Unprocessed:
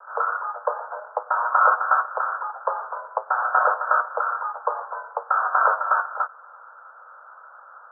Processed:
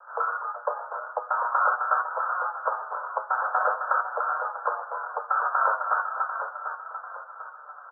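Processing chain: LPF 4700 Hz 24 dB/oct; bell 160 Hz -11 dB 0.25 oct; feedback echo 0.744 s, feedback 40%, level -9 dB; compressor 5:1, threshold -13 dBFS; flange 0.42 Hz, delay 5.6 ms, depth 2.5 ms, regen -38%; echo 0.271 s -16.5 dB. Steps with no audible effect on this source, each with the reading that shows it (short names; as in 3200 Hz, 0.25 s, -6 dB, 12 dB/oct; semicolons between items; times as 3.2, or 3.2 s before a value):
LPF 4700 Hz: input band ends at 1800 Hz; bell 160 Hz: input band starts at 400 Hz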